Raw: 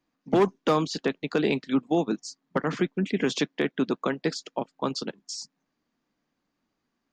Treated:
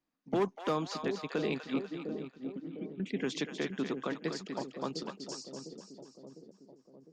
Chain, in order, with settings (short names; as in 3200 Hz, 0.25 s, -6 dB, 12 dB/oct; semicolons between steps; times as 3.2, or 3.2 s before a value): 1.84–3 vocal tract filter i; split-band echo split 640 Hz, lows 0.704 s, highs 0.245 s, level -7 dB; gain -9 dB